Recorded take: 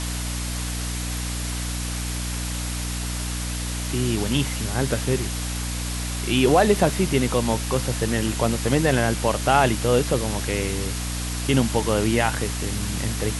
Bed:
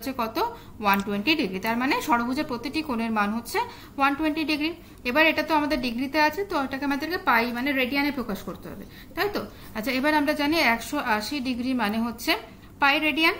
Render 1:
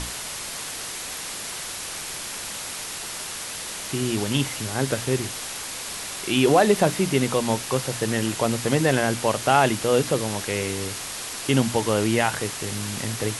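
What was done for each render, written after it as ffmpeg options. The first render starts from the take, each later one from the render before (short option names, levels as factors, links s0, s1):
-af "bandreject=f=60:t=h:w=6,bandreject=f=120:t=h:w=6,bandreject=f=180:t=h:w=6,bandreject=f=240:t=h:w=6,bandreject=f=300:t=h:w=6"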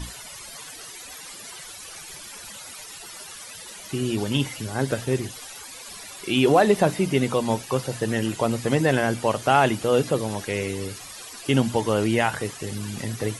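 -af "afftdn=nr=15:nf=-34"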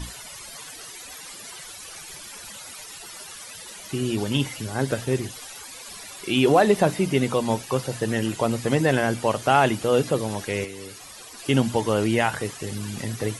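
-filter_complex "[0:a]asettb=1/sr,asplit=3[s0][s1][s2];[s0]atrim=end=10.644[s3];[s1]atrim=start=10.64:end=11.39,asetpts=PTS-STARTPTS,afade=t=in:d=0.004:c=qsin,afade=t=out:st=0.746:d=0.004:c=qsin,acrossover=split=230|1000[s4][s5][s6];[s4]acompressor=threshold=0.00398:ratio=4[s7];[s5]acompressor=threshold=0.0126:ratio=4[s8];[s6]acompressor=threshold=0.01:ratio=4[s9];[s7][s8][s9]amix=inputs=3:normalize=0[s10];[s2]atrim=start=11.386[s11];[s3][s10]acrossfade=d=0.004:c1=hsin:c2=qsin[s12];[s12][s11]acrossfade=d=0.004:c1=qsin:c2=hsin"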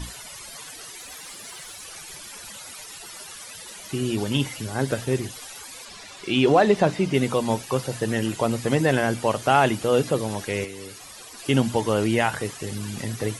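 -filter_complex "[0:a]asettb=1/sr,asplit=3[s0][s1][s2];[s0]atrim=end=0.974[s3];[s1]atrim=start=0.97:end=1.83,asetpts=PTS-STARTPTS,afade=t=in:d=0.004:c=qsin,afade=t=out:st=0.856:d=0.004:c=qsin,acrusher=bits=5:mode=log:mix=0:aa=0.000001[s4];[s2]atrim=start=1.826[s5];[s3][s4]acrossfade=d=0.004:c1=hsin:c2=qsin[s6];[s6][s5]acrossfade=d=0.004:c1=qsin:c2=hsin,asettb=1/sr,asplit=3[s7][s8][s9];[s7]atrim=end=5.854[s10];[s8]atrim=start=5.85:end=7.14,asetpts=PTS-STARTPTS,afade=t=in:d=0.004:c=qsin,afade=t=out:st=1.286:d=0.004:c=qsin,lowpass=6500[s11];[s9]atrim=start=7.136[s12];[s10][s11]acrossfade=d=0.004:c1=hsin:c2=qsin[s13];[s13][s12]acrossfade=d=0.004:c1=qsin:c2=hsin"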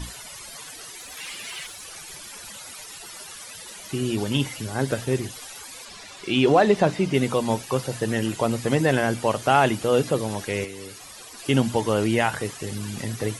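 -filter_complex "[0:a]asettb=1/sr,asplit=3[s0][s1][s2];[s0]atrim=end=1.174[s3];[s1]atrim=start=1.17:end=1.67,asetpts=PTS-STARTPTS,afade=t=in:d=0.004:c=qsin,afade=t=out:st=0.496:d=0.004:c=qsin,equalizer=f=2600:w=1.3:g=11[s4];[s2]atrim=start=1.666[s5];[s3][s4]acrossfade=d=0.004:c1=hsin:c2=qsin[s6];[s6][s5]acrossfade=d=0.004:c1=qsin:c2=hsin"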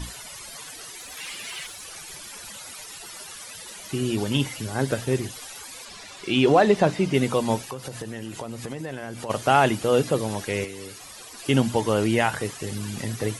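-filter_complex "[0:a]asplit=3[s0][s1][s2];[s0]afade=t=out:st=7.65:d=0.02[s3];[s1]acompressor=threshold=0.0316:ratio=6:attack=3.2:release=140:knee=1:detection=peak,afade=t=in:st=7.65:d=0.02,afade=t=out:st=9.29:d=0.02[s4];[s2]afade=t=in:st=9.29:d=0.02[s5];[s3][s4][s5]amix=inputs=3:normalize=0"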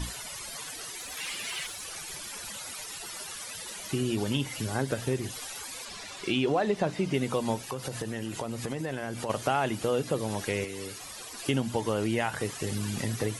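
-af "acompressor=threshold=0.0501:ratio=3"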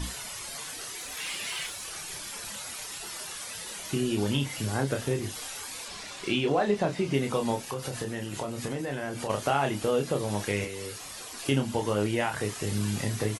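-filter_complex "[0:a]asplit=2[s0][s1];[s1]adelay=29,volume=0.531[s2];[s0][s2]amix=inputs=2:normalize=0"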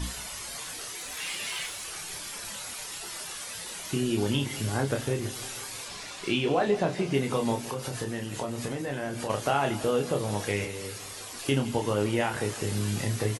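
-filter_complex "[0:a]asplit=2[s0][s1];[s1]adelay=17,volume=0.251[s2];[s0][s2]amix=inputs=2:normalize=0,aecho=1:1:164|328|492|656|820|984:0.158|0.0935|0.0552|0.0326|0.0192|0.0113"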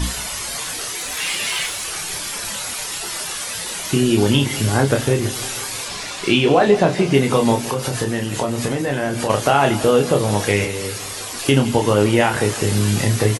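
-af "volume=3.76,alimiter=limit=0.794:level=0:latency=1"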